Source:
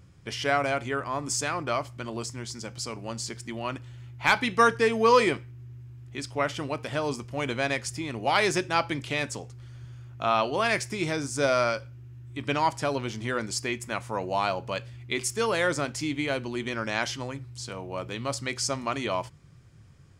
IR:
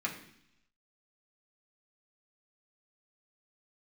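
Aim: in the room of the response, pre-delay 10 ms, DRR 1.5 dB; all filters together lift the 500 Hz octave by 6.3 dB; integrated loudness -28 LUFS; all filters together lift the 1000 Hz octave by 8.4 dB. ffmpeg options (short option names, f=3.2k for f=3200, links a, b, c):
-filter_complex "[0:a]equalizer=f=500:t=o:g=5,equalizer=f=1k:t=o:g=9,asplit=2[a][b];[1:a]atrim=start_sample=2205,adelay=10[c];[b][c]afir=irnorm=-1:irlink=0,volume=-6dB[d];[a][d]amix=inputs=2:normalize=0,volume=-7.5dB"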